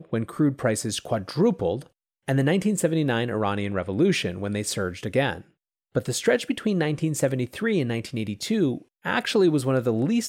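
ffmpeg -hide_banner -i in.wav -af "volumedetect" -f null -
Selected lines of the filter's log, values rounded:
mean_volume: -24.6 dB
max_volume: -9.5 dB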